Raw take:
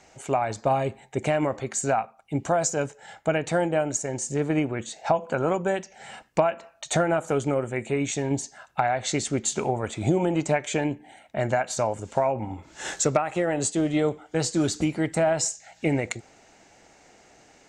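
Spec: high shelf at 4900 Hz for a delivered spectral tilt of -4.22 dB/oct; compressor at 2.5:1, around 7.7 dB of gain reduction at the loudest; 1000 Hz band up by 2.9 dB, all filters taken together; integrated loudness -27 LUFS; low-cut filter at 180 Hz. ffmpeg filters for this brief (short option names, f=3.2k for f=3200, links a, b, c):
-af "highpass=180,equalizer=f=1k:t=o:g=4.5,highshelf=f=4.9k:g=-5.5,acompressor=threshold=-27dB:ratio=2.5,volume=4dB"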